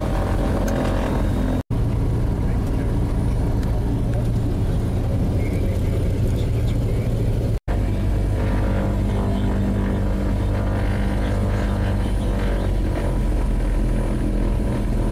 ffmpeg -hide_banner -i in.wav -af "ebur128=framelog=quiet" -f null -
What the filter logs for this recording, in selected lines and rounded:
Integrated loudness:
  I:         -22.5 LUFS
  Threshold: -32.5 LUFS
Loudness range:
  LRA:         0.6 LU
  Threshold: -42.5 LUFS
  LRA low:   -22.9 LUFS
  LRA high:  -22.2 LUFS